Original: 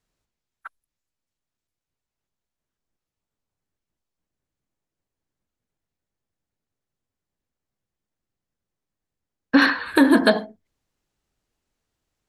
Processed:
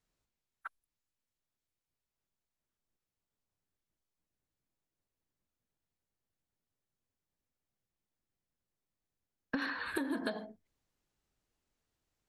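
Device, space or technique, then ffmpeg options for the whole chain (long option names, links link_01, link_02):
serial compression, peaks first: -af "acompressor=threshold=-22dB:ratio=6,acompressor=threshold=-29dB:ratio=2.5,volume=-5.5dB"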